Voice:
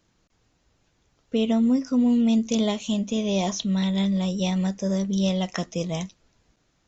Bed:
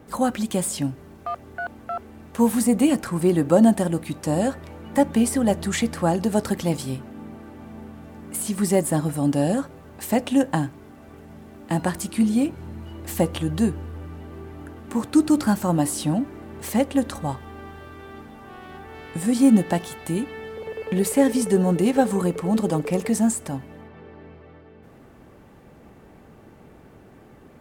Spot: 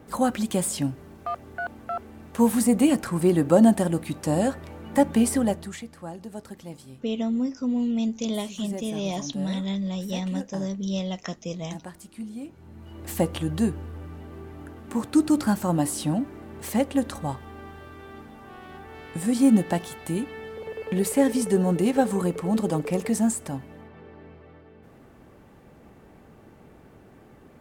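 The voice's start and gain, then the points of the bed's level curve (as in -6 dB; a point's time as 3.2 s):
5.70 s, -5.0 dB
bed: 5.4 s -1 dB
5.85 s -16.5 dB
12.4 s -16.5 dB
13.04 s -2.5 dB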